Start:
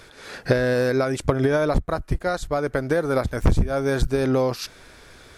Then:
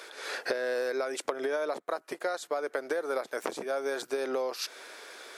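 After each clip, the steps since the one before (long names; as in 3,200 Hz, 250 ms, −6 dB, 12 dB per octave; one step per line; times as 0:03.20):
high-pass filter 380 Hz 24 dB per octave
downward compressor 4 to 1, threshold −32 dBFS, peak gain reduction 14 dB
level +2 dB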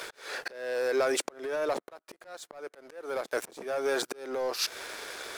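leveller curve on the samples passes 3
volume swells 591 ms
level −3.5 dB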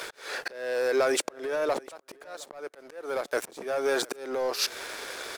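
single-tap delay 712 ms −23.5 dB
level +2.5 dB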